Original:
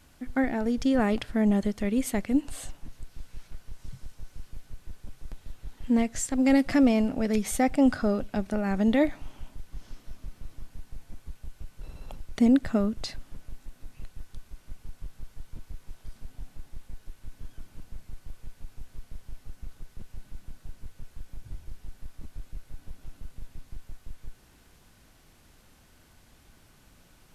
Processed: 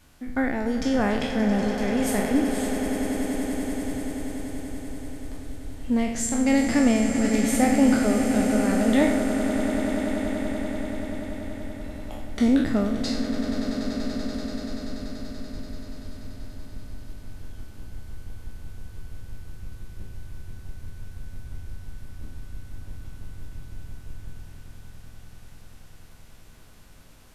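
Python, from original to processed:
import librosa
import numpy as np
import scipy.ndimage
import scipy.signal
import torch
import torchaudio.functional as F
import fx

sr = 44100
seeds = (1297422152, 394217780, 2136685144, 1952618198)

y = fx.spec_trails(x, sr, decay_s=0.71)
y = fx.echo_swell(y, sr, ms=96, loudest=8, wet_db=-13)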